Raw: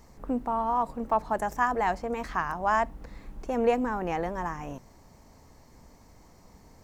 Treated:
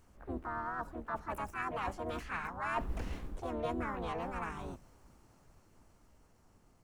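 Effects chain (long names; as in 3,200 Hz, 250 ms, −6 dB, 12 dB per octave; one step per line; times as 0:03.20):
sub-octave generator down 2 octaves, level −3 dB
source passing by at 0:02.94, 6 m/s, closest 1.7 metres
reversed playback
downward compressor 6 to 1, threshold −44 dBFS, peak gain reduction 19.5 dB
reversed playback
pitch-shifted copies added +5 semitones −1 dB, +7 semitones −4 dB
level +6 dB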